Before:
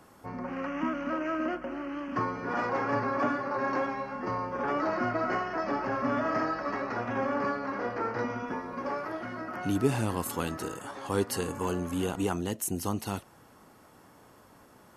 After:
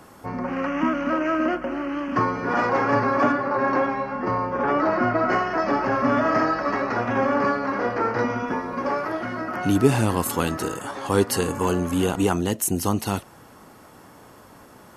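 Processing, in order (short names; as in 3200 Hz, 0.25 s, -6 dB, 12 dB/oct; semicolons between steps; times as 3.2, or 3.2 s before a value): 3.32–5.29 high shelf 5000 Hz -11.5 dB; gain +8.5 dB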